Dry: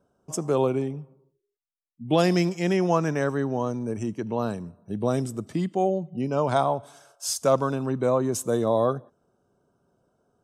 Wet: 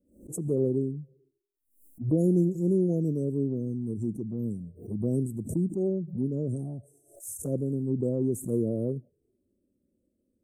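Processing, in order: inverse Chebyshev band-stop 950–4500 Hz, stop band 50 dB; envelope flanger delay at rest 3.6 ms, full sweep at -21.5 dBFS; backwards sustainer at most 120 dB/s

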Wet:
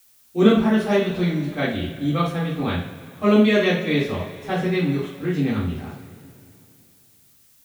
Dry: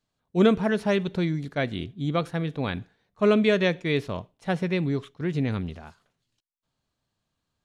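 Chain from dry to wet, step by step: two-slope reverb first 0.44 s, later 2.8 s, from -18 dB, DRR -10 dB; added noise blue -50 dBFS; gain -6 dB

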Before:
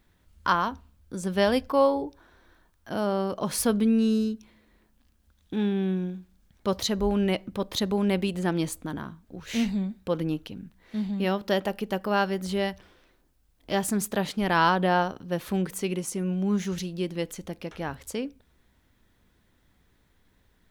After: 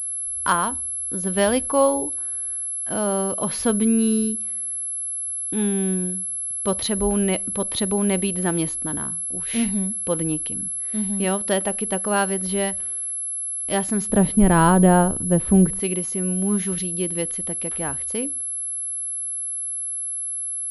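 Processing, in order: 14.09–15.8 tilt -4 dB/oct; pulse-width modulation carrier 11000 Hz; gain +3 dB

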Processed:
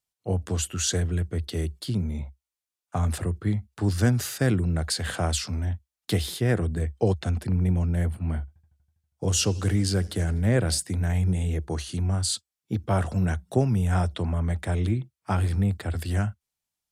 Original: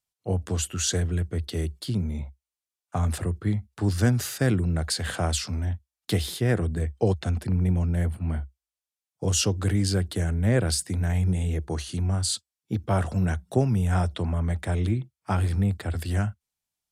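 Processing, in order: 8.39–10.79 warbling echo 81 ms, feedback 73%, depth 128 cents, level -24 dB

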